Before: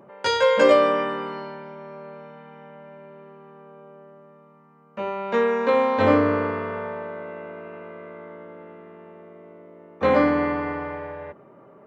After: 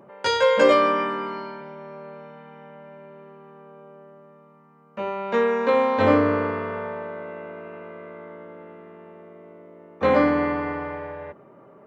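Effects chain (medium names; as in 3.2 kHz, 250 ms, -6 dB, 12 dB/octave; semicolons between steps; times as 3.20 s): 0.68–1.61 s: doubling 16 ms -6 dB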